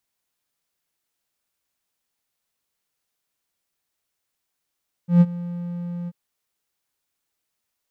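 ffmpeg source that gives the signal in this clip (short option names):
-f lavfi -i "aevalsrc='0.501*(1-4*abs(mod(174*t+0.25,1)-0.5))':d=1.038:s=44100,afade=t=in:d=0.13,afade=t=out:st=0.13:d=0.042:silence=0.112,afade=t=out:st=1:d=0.038"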